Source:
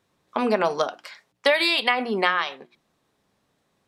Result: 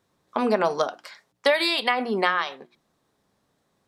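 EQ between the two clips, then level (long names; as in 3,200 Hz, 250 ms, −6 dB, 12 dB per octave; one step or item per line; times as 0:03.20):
parametric band 2,600 Hz −4.5 dB 0.75 octaves
0.0 dB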